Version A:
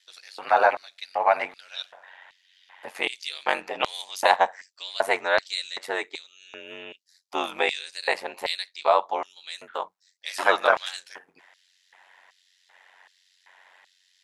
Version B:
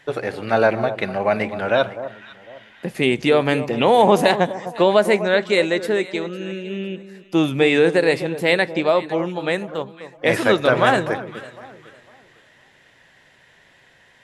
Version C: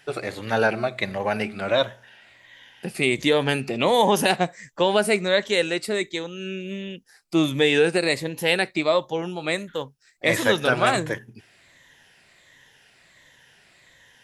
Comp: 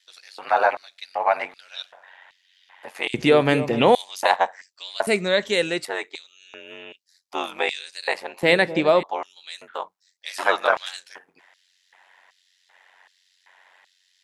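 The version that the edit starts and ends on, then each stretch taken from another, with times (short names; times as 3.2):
A
3.14–3.95 from B
5.07–5.85 from C
8.43–9.03 from B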